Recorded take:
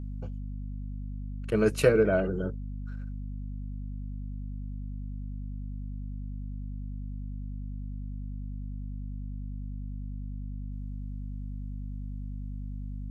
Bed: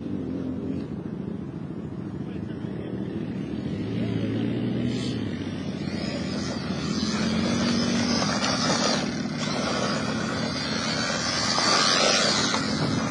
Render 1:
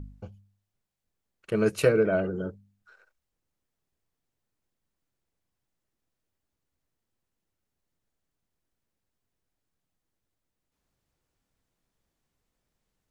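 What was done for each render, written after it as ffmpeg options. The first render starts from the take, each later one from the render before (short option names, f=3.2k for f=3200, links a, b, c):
-af "bandreject=f=50:t=h:w=4,bandreject=f=100:t=h:w=4,bandreject=f=150:t=h:w=4,bandreject=f=200:t=h:w=4,bandreject=f=250:t=h:w=4"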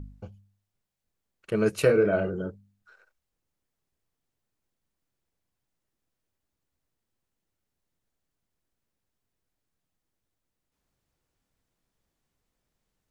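-filter_complex "[0:a]asettb=1/sr,asplit=3[a][b][c];[a]atrim=end=1.864[d];[b]atrim=start=1.86:end=2.35,asetpts=PTS-STARTPTS,afade=t=in:d=0.004:c=qsin,afade=t=out:st=0.486:d=0.004:c=qsin,asplit=2[e][f];[f]adelay=30,volume=-6.5dB[g];[e][g]amix=inputs=2:normalize=0,atrim=end_sample=21609[h];[c]atrim=start=2.346[i];[d][h]acrossfade=d=0.004:c1=hsin:c2=qsin[j];[j][i]acrossfade=d=0.004:c1=qsin:c2=hsin"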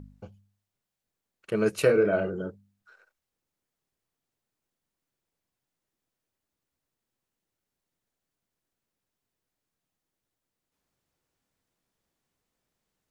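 -af "lowshelf=f=88:g=-10.5"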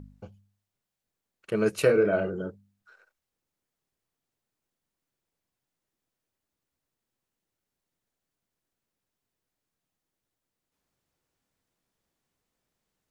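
-af anull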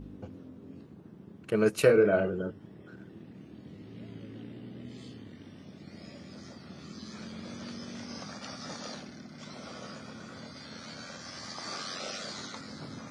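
-filter_complex "[1:a]volume=-18dB[a];[0:a][a]amix=inputs=2:normalize=0"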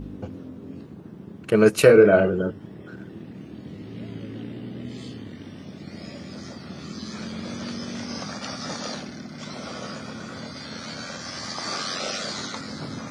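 -af "volume=9dB,alimiter=limit=-3dB:level=0:latency=1"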